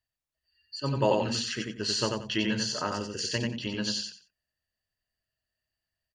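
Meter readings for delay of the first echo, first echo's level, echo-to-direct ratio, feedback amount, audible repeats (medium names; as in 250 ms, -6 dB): 91 ms, -3.5 dB, -3.5 dB, 23%, 3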